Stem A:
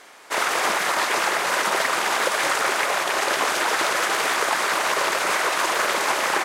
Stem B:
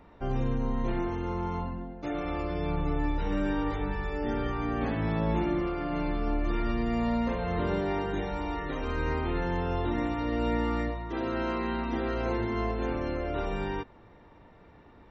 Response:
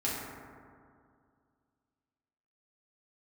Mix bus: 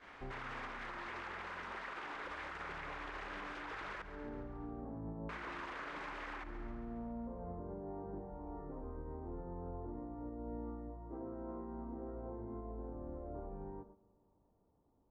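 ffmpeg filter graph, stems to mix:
-filter_complex "[0:a]equalizer=frequency=620:width=1.6:gain=-6.5,alimiter=limit=-15.5dB:level=0:latency=1:release=82,volume=-5.5dB,asplit=3[link_01][link_02][link_03];[link_01]atrim=end=4.02,asetpts=PTS-STARTPTS,afade=type=out:start_time=4.016:duration=0.004:curve=hsin[link_04];[link_02]atrim=start=4.02:end=5.29,asetpts=PTS-STARTPTS,volume=0[link_05];[link_03]atrim=start=5.29,asetpts=PTS-STARTPTS,afade=type=in:duration=0.004:curve=hsin[link_06];[link_04][link_05][link_06]concat=n=3:v=0:a=1,asplit=3[link_07][link_08][link_09];[link_08]volume=-21dB[link_10];[link_09]volume=-18.5dB[link_11];[1:a]lowpass=frequency=1000:width=0.5412,lowpass=frequency=1000:width=1.3066,volume=-12.5dB,asplit=2[link_12][link_13];[link_13]volume=-19dB[link_14];[2:a]atrim=start_sample=2205[link_15];[link_10][link_14]amix=inputs=2:normalize=0[link_16];[link_16][link_15]afir=irnorm=-1:irlink=0[link_17];[link_11]aecho=0:1:138|276|414|552|690|828|966|1104:1|0.55|0.303|0.166|0.0915|0.0503|0.0277|0.0152[link_18];[link_07][link_12][link_17][link_18]amix=inputs=4:normalize=0,lowpass=2300,agate=range=-9dB:threshold=-56dB:ratio=16:detection=peak,alimiter=level_in=12.5dB:limit=-24dB:level=0:latency=1:release=289,volume=-12.5dB"

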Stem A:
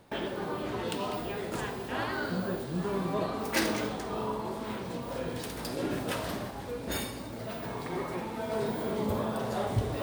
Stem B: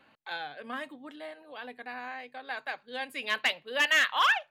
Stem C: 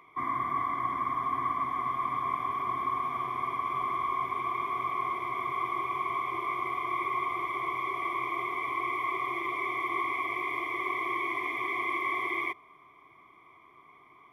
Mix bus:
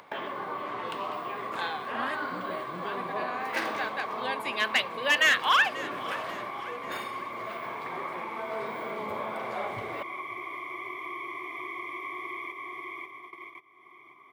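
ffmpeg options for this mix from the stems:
ffmpeg -i stem1.wav -i stem2.wav -i stem3.wav -filter_complex "[0:a]acrossover=split=560 3100:gain=0.224 1 0.178[link_01][link_02][link_03];[link_01][link_02][link_03]amix=inputs=3:normalize=0,volume=1.5dB,asplit=2[link_04][link_05];[link_05]volume=-20dB[link_06];[1:a]adelay=1300,volume=2dB,asplit=2[link_07][link_08];[link_08]volume=-17.5dB[link_09];[2:a]volume=-9dB,asplit=2[link_10][link_11];[link_11]volume=-5dB[link_12];[link_06][link_09][link_12]amix=inputs=3:normalize=0,aecho=0:1:538|1076|1614|2152|2690|3228:1|0.44|0.194|0.0852|0.0375|0.0165[link_13];[link_04][link_07][link_10][link_13]amix=inputs=4:normalize=0,agate=range=-20dB:threshold=-50dB:ratio=16:detection=peak,highpass=140,acompressor=mode=upward:threshold=-32dB:ratio=2.5" out.wav

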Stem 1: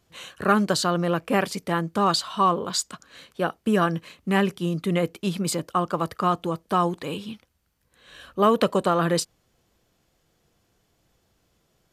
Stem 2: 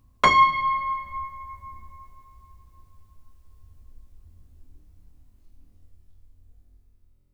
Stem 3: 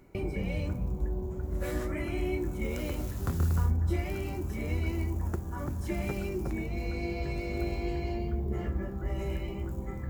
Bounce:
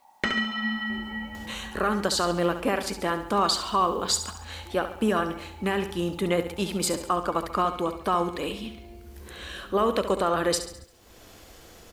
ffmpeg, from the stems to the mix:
ffmpeg -i stem1.wav -i stem2.wav -i stem3.wav -filter_complex "[0:a]alimiter=limit=-13.5dB:level=0:latency=1:release=142,acompressor=mode=upward:threshold=-33dB:ratio=2.5,adelay=1350,volume=1dB,asplit=2[link_01][link_02];[link_02]volume=-10.5dB[link_03];[1:a]acrossover=split=110|920|2800[link_04][link_05][link_06][link_07];[link_04]acompressor=threshold=-50dB:ratio=4[link_08];[link_05]acompressor=threshold=-32dB:ratio=4[link_09];[link_06]acompressor=threshold=-28dB:ratio=4[link_10];[link_07]acompressor=threshold=-42dB:ratio=4[link_11];[link_08][link_09][link_10][link_11]amix=inputs=4:normalize=0,aeval=exprs='val(0)*sin(2*PI*850*n/s)':channel_layout=same,volume=2.5dB,asplit=2[link_12][link_13];[link_13]volume=-6dB[link_14];[2:a]alimiter=level_in=4dB:limit=-24dB:level=0:latency=1,volume=-4dB,adelay=750,volume=-9dB[link_15];[link_03][link_14]amix=inputs=2:normalize=0,aecho=0:1:69|138|207|276|345|414|483:1|0.49|0.24|0.118|0.0576|0.0282|0.0138[link_16];[link_01][link_12][link_15][link_16]amix=inputs=4:normalize=0,equalizer=frequency=150:width=2.2:gain=-11.5,acrusher=bits=10:mix=0:aa=0.000001" out.wav

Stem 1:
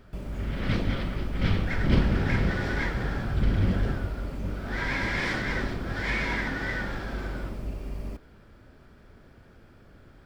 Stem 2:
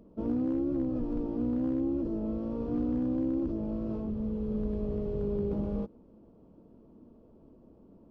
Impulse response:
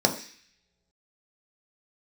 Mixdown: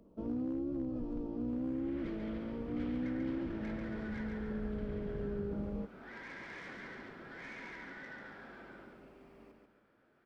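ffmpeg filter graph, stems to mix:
-filter_complex "[0:a]acrossover=split=160 3000:gain=0.0708 1 0.251[link_01][link_02][link_03];[link_01][link_02][link_03]amix=inputs=3:normalize=0,asoftclip=type=tanh:threshold=-26dB,adelay=1350,volume=-13dB,asplit=2[link_04][link_05];[link_05]volume=-4.5dB[link_06];[1:a]volume=-3dB[link_07];[link_06]aecho=0:1:140|280|420|560|700:1|0.35|0.122|0.0429|0.015[link_08];[link_04][link_07][link_08]amix=inputs=3:normalize=0,lowshelf=frequency=440:gain=-4,acrossover=split=340[link_09][link_10];[link_10]acompressor=threshold=-50dB:ratio=1.5[link_11];[link_09][link_11]amix=inputs=2:normalize=0"

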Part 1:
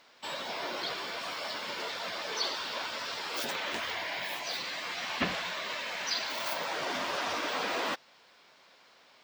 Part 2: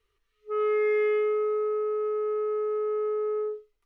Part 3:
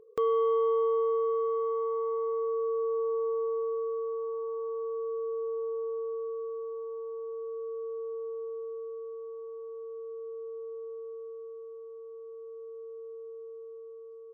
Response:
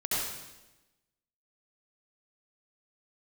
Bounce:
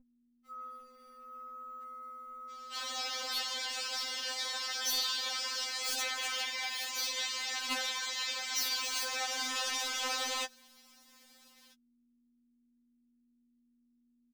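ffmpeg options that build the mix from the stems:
-filter_complex "[0:a]highpass=410,equalizer=frequency=7100:width_type=o:width=1.6:gain=14.5,aeval=exprs='0.0668*(abs(mod(val(0)/0.0668+3,4)-2)-1)':channel_layout=same,adelay=2500,volume=-2dB[link_01];[1:a]volume=-4.5dB[link_02];[2:a]highpass=frequency=850:width=0.5412,highpass=frequency=850:width=1.3066,adelay=1650,volume=-19dB[link_03];[link_01][link_02][link_03]amix=inputs=3:normalize=0,aeval=exprs='val(0)*gte(abs(val(0)),0.00188)':channel_layout=same,aeval=exprs='val(0)+0.00224*(sin(2*PI*60*n/s)+sin(2*PI*2*60*n/s)/2+sin(2*PI*3*60*n/s)/3+sin(2*PI*4*60*n/s)/4+sin(2*PI*5*60*n/s)/5)':channel_layout=same,afftfilt=real='re*3.46*eq(mod(b,12),0)':imag='im*3.46*eq(mod(b,12),0)':win_size=2048:overlap=0.75"

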